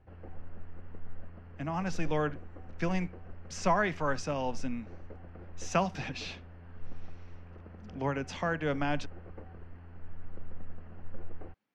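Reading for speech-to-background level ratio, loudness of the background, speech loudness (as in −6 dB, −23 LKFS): 17.0 dB, −50.5 LKFS, −33.5 LKFS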